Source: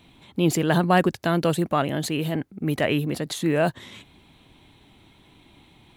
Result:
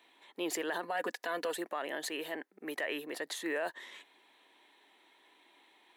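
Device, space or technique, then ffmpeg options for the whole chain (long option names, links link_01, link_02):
laptop speaker: -filter_complex "[0:a]asettb=1/sr,asplit=3[link_01][link_02][link_03];[link_01]atrim=end=0.824[link_04];[link_02]atrim=start=0.82:end=1.56,asetpts=PTS-STARTPTS,afade=type=in:duration=0.004:curve=qsin,afade=type=out:start_time=0.736:duration=0.004:curve=qsin,aecho=1:1:4.1:0.71,atrim=end_sample=32634[link_05];[link_03]atrim=start=1.556[link_06];[link_04][link_05]acrossfade=duration=0.004:curve1=hsin:curve2=qsin[link_07];[link_07][link_06]acrossfade=duration=0.004:curve1=qsin:curve2=hsin,highpass=frequency=370:width=0.5412,highpass=frequency=370:width=1.3066,equalizer=frequency=960:width_type=o:width=0.27:gain=4.5,equalizer=frequency=1800:width_type=o:width=0.27:gain=11,alimiter=limit=-17dB:level=0:latency=1:release=50,volume=-8.5dB"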